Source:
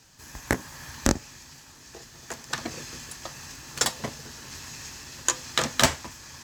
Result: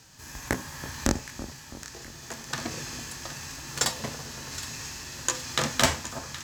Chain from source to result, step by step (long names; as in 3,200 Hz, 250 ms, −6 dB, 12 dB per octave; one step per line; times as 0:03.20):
harmonic and percussive parts rebalanced harmonic +9 dB
echo with a time of its own for lows and highs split 1,300 Hz, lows 330 ms, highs 769 ms, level −13 dB
level −3.5 dB